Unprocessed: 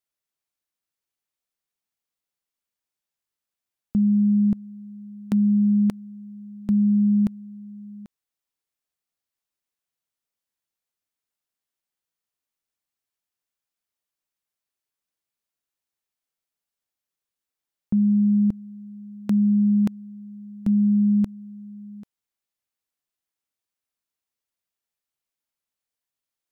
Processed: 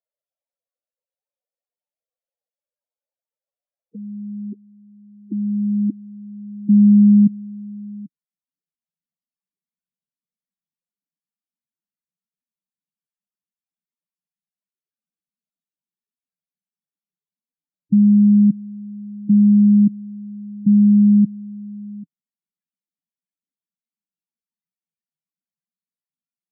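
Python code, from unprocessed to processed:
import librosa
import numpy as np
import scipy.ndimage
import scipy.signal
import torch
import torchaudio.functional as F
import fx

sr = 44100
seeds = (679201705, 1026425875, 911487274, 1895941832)

y = fx.filter_sweep_highpass(x, sr, from_hz=520.0, to_hz=170.0, start_s=3.8, end_s=7.48, q=2.6)
y = fx.spec_topn(y, sr, count=8)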